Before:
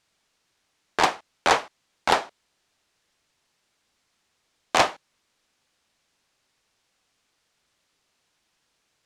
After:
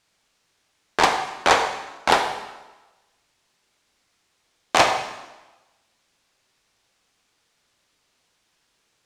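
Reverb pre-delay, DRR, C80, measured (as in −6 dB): 12 ms, 4.5 dB, 9.0 dB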